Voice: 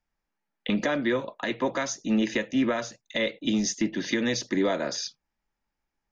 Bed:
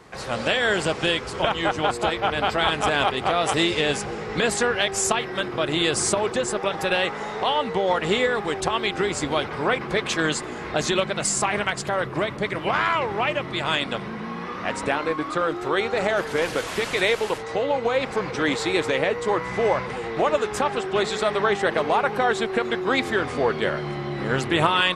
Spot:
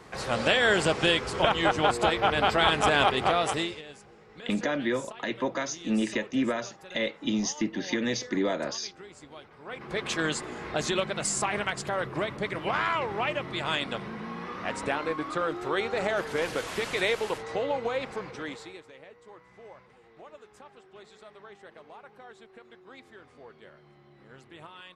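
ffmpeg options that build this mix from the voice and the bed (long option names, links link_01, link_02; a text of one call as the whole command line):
ffmpeg -i stem1.wav -i stem2.wav -filter_complex "[0:a]adelay=3800,volume=-2.5dB[link_01];[1:a]volume=16.5dB,afade=type=out:start_time=3.23:duration=0.59:silence=0.0794328,afade=type=in:start_time=9.65:duration=0.45:silence=0.133352,afade=type=out:start_time=17.64:duration=1.18:silence=0.0794328[link_02];[link_01][link_02]amix=inputs=2:normalize=0" out.wav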